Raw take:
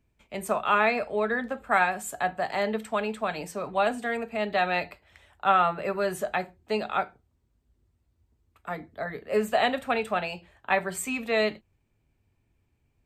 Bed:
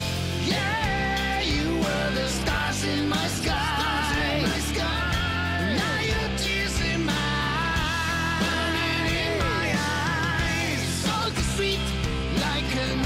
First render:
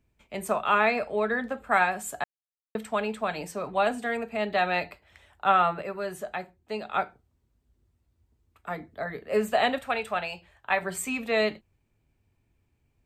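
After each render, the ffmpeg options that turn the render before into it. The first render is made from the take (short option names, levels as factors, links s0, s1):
-filter_complex "[0:a]asettb=1/sr,asplit=3[s0][s1][s2];[s0]atrim=end=9.784[s3];[s1]atrim=start=9.78:end=10.82,asetpts=PTS-STARTPTS,afade=t=in:d=0.004:c=qsin,afade=t=out:st=1.036:d=0.004:c=qsin,equalizer=f=260:w=0.8:g=-8[s4];[s2]atrim=start=10.816[s5];[s3][s4]acrossfade=d=0.004:c1=hsin:c2=qsin[s6];[s6][s5]acrossfade=d=0.004:c1=qsin:c2=hsin,asplit=5[s7][s8][s9][s10][s11];[s7]atrim=end=2.24,asetpts=PTS-STARTPTS,afade=t=out:st=2.236:d=0.004:c=hsin[s12];[s8]atrim=start=2.24:end=2.75,asetpts=PTS-STARTPTS,volume=0[s13];[s9]atrim=start=2.75:end=5.822,asetpts=PTS-STARTPTS,afade=t=in:d=0.004:c=hsin[s14];[s10]atrim=start=5.818:end=6.942,asetpts=PTS-STARTPTS,volume=0.531[s15];[s11]atrim=start=6.938[s16];[s12][s13][s14]concat=n=3:v=0:a=1[s17];[s17][s15]acrossfade=d=0.004:c1=hsin:c2=hsin[s18];[s18][s16]acrossfade=d=0.004:c1=hsin:c2=hsin"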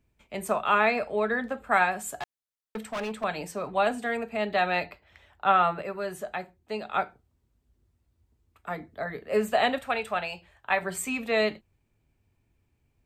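-filter_complex "[0:a]asettb=1/sr,asplit=3[s0][s1][s2];[s0]atrim=end=2.154[s3];[s1]atrim=start=2.15:end=3.24,asetpts=PTS-STARTPTS,afade=t=in:d=0.004:c=qsin,afade=t=out:st=1.086:d=0.004:c=qsin,asoftclip=type=hard:threshold=0.0355[s4];[s2]atrim=start=3.236[s5];[s3][s4]acrossfade=d=0.004:c1=hsin:c2=qsin[s6];[s6][s5]acrossfade=d=0.004:c1=qsin:c2=hsin,asettb=1/sr,asplit=3[s7][s8][s9];[s7]atrim=end=4.864[s10];[s8]atrim=start=4.86:end=5.62,asetpts=PTS-STARTPTS,afade=t=in:d=0.004:c=qsin,afade=t=out:st=0.756:d=0.004:c=qsin,equalizer=f=9400:t=o:w=0.77:g=-10.5[s11];[s9]atrim=start=5.616[s12];[s10][s11]acrossfade=d=0.004:c1=hsin:c2=qsin[s13];[s13][s12]acrossfade=d=0.004:c1=qsin:c2=hsin"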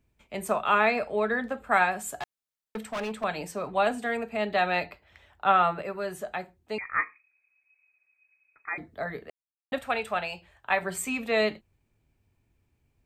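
-filter_complex "[0:a]asettb=1/sr,asplit=3[s0][s1][s2];[s0]atrim=end=6.784[s3];[s1]atrim=start=6.78:end=8.78,asetpts=PTS-STARTPTS,afade=t=in:d=0.004:c=qsin,afade=t=out:st=1.996:d=0.004:c=qsin,lowpass=f=2200:t=q:w=0.5098,lowpass=f=2200:t=q:w=0.6013,lowpass=f=2200:t=q:w=0.9,lowpass=f=2200:t=q:w=2.563,afreqshift=-2600[s4];[s2]atrim=start=8.776[s5];[s3][s4]acrossfade=d=0.004:c1=hsin:c2=qsin[s6];[s6][s5]acrossfade=d=0.004:c1=qsin:c2=hsin,asplit=3[s7][s8][s9];[s7]atrim=end=9.3,asetpts=PTS-STARTPTS,afade=t=out:st=9.296:d=0.004:c=hsin[s10];[s8]atrim=start=9.3:end=9.72,asetpts=PTS-STARTPTS,volume=0[s11];[s9]atrim=start=9.72,asetpts=PTS-STARTPTS,afade=t=in:d=0.004:c=hsin[s12];[s10][s11][s12]concat=n=3:v=0:a=1"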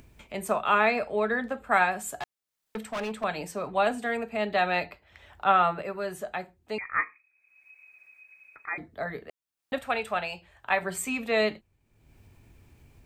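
-af "acompressor=mode=upward:threshold=0.00891:ratio=2.5"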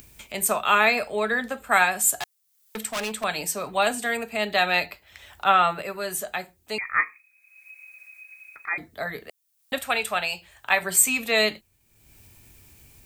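-af "crystalizer=i=5.5:c=0"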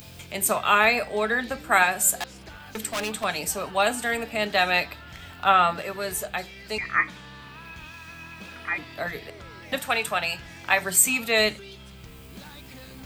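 -filter_complex "[1:a]volume=0.119[s0];[0:a][s0]amix=inputs=2:normalize=0"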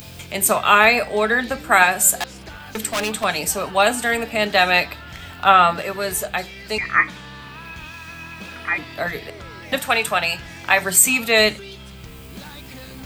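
-af "volume=2,alimiter=limit=0.891:level=0:latency=1"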